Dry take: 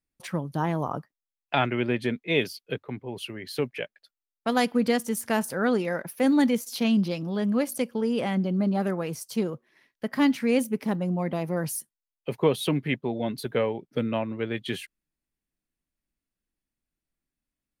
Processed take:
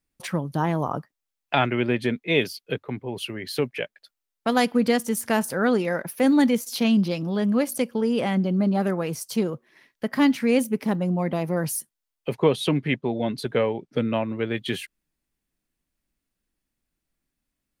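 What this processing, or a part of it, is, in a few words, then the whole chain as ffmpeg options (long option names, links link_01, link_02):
parallel compression: -filter_complex "[0:a]asettb=1/sr,asplit=3[link_01][link_02][link_03];[link_01]atrim=end=12.344[link_04];[link_02]atrim=start=12.34:end=14.14,asetpts=PTS-STARTPTS,afade=type=in:duration=0.004:curve=qsin,afade=type=out:start_time=1.796:duration=0.004:curve=qsin,lowpass=8900[link_05];[link_03]atrim=start=14.136[link_06];[link_04][link_05]acrossfade=duration=0.004:curve1=hsin:curve2=qsin[link_07];[link_07][link_06]acrossfade=duration=0.004:curve1=qsin:curve2=hsin,asplit=2[link_08][link_09];[link_09]acompressor=threshold=-39dB:ratio=6,volume=-4dB[link_10];[link_08][link_10]amix=inputs=2:normalize=0,volume=2dB"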